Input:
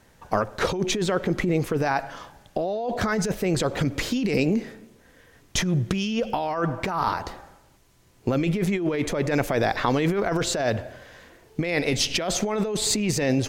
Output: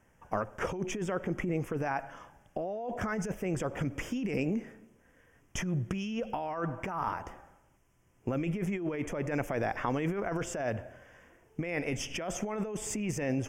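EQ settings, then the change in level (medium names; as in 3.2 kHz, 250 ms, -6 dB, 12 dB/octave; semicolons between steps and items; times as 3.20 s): Butterworth band-stop 4.1 kHz, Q 1.7; peaking EQ 420 Hz -2 dB 0.35 oct; treble shelf 5.9 kHz -5.5 dB; -8.5 dB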